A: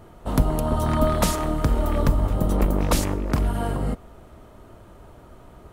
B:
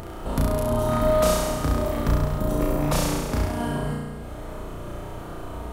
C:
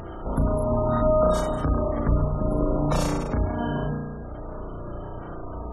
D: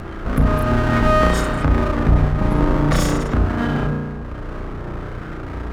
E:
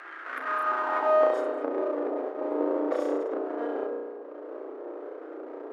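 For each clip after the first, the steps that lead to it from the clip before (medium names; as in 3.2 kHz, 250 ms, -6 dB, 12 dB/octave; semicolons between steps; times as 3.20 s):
upward compressor, threshold -22 dBFS; on a send: flutter echo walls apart 5.8 m, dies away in 1.4 s; on the sum: trim -5 dB
spectral gate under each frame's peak -25 dB strong
comb filter that takes the minimum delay 0.58 ms; trim +7.5 dB
brick-wall FIR high-pass 260 Hz; treble shelf 9.8 kHz +12 dB; band-pass sweep 1.7 kHz -> 490 Hz, 0.40–1.52 s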